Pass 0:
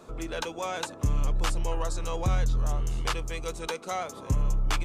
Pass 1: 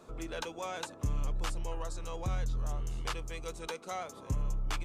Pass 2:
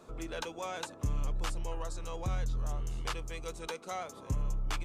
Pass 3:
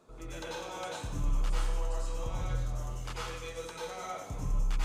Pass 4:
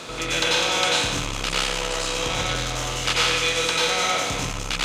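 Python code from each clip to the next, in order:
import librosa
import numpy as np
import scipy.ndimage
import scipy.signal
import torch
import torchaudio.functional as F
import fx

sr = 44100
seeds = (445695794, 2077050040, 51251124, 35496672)

y1 = fx.rider(x, sr, range_db=3, speed_s=2.0)
y1 = y1 * 10.0 ** (-7.5 / 20.0)
y2 = y1
y3 = fx.rev_plate(y2, sr, seeds[0], rt60_s=0.94, hf_ratio=0.95, predelay_ms=80, drr_db=-7.0)
y3 = y3 * 10.0 ** (-7.5 / 20.0)
y4 = fx.bin_compress(y3, sr, power=0.6)
y4 = fx.fold_sine(y4, sr, drive_db=4, ceiling_db=-18.5)
y4 = fx.weighting(y4, sr, curve='D')
y4 = y4 * 10.0 ** (4.0 / 20.0)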